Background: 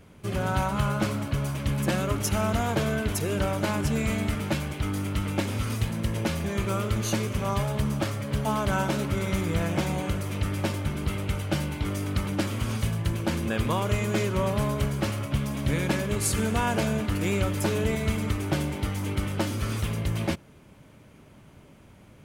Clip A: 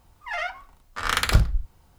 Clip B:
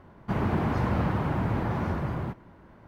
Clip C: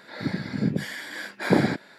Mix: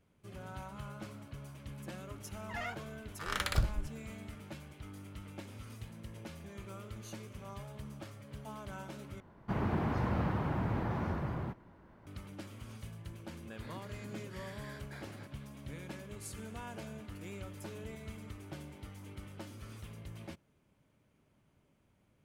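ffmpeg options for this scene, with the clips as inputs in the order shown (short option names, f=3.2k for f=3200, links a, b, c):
-filter_complex "[0:a]volume=-19.5dB[a];[3:a]acompressor=threshold=-30dB:ratio=6:attack=3.2:release=140:knee=1:detection=peak[b];[a]asplit=2[c][d];[c]atrim=end=9.204[e];[2:a]atrim=end=2.87,asetpts=PTS-STARTPTS,volume=-6.5dB[f];[d]atrim=start=12.066[g];[1:a]atrim=end=1.98,asetpts=PTS-STARTPTS,volume=-12dB,afade=t=in:d=0.004:c=hsin,afade=t=out:st=1.976:d=0.004:c=hsin,adelay=2230[h];[b]atrim=end=1.98,asetpts=PTS-STARTPTS,volume=-16.5dB,afade=t=in:d=0.004:c=hsin,afade=t=out:st=1.976:d=0.004:c=hsin,adelay=13510[i];[e][f]acrossfade=d=0.004:c1=hsin:c2=hsin[j];[j][g]acrossfade=d=0.004:c1=hsin:c2=hsin[k];[k][h][i]amix=inputs=3:normalize=0"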